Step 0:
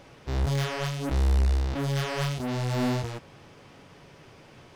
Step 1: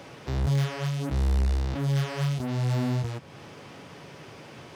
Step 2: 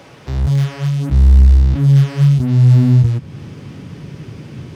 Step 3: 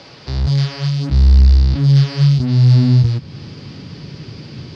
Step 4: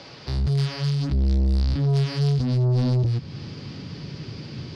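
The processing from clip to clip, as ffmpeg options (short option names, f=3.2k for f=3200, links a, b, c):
-filter_complex "[0:a]highpass=100,acrossover=split=170[a][b];[b]acompressor=threshold=-47dB:ratio=2[c];[a][c]amix=inputs=2:normalize=0,volume=6.5dB"
-af "asubboost=boost=8.5:cutoff=250,volume=4dB"
-af "lowpass=f=4.7k:t=q:w=5.8,volume=-1dB"
-af "asoftclip=type=tanh:threshold=-15dB,volume=-3dB"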